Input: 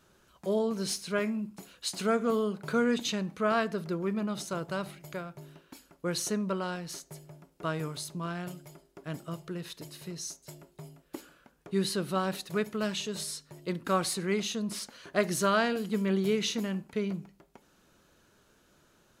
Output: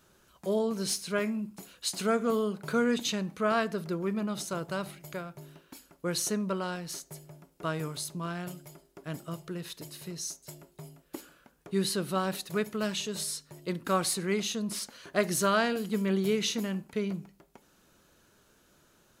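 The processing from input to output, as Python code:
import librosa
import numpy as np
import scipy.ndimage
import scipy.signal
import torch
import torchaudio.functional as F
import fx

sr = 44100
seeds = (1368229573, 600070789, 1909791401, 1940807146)

y = fx.high_shelf(x, sr, hz=8100.0, db=6.0)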